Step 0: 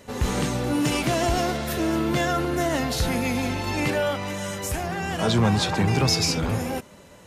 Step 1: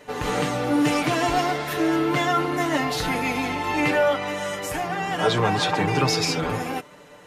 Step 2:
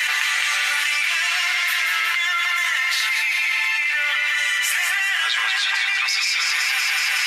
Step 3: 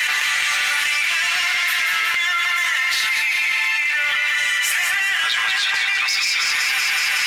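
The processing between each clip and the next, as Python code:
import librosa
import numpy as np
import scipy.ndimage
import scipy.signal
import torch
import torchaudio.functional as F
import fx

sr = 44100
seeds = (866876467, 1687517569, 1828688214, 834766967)

y1 = fx.bass_treble(x, sr, bass_db=-10, treble_db=-8)
y1 = fx.notch(y1, sr, hz=610.0, q=19.0)
y1 = y1 + 0.75 * np.pad(y1, (int(6.7 * sr / 1000.0), 0))[:len(y1)]
y1 = y1 * 10.0 ** (2.5 / 20.0)
y2 = fx.ladder_highpass(y1, sr, hz=1700.0, resonance_pct=45)
y2 = fx.echo_feedback(y2, sr, ms=186, feedback_pct=55, wet_db=-7.0)
y2 = fx.env_flatten(y2, sr, amount_pct=100)
y2 = y2 * 10.0 ** (5.5 / 20.0)
y3 = np.clip(10.0 ** (14.5 / 20.0) * y2, -1.0, 1.0) / 10.0 ** (14.5 / 20.0)
y3 = y3 * 10.0 ** (1.5 / 20.0)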